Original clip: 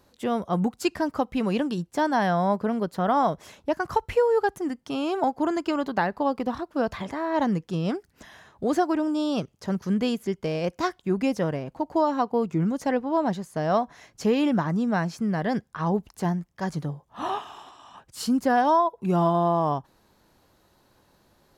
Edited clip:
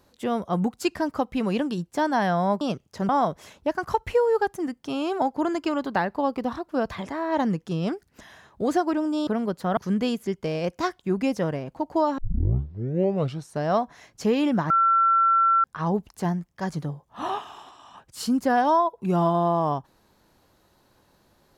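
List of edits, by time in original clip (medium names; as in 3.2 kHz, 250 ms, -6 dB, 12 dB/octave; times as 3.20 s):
2.61–3.11 s: swap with 9.29–9.77 s
12.18 s: tape start 1.48 s
14.70–15.64 s: bleep 1.35 kHz -16 dBFS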